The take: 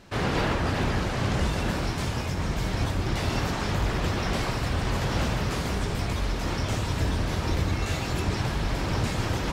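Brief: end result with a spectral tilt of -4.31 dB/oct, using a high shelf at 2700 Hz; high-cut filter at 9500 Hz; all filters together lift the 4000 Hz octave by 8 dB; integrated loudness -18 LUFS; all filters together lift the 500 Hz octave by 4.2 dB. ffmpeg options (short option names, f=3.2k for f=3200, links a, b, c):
-af "lowpass=9.5k,equalizer=f=500:t=o:g=5,highshelf=f=2.7k:g=5,equalizer=f=4k:t=o:g=6,volume=7dB"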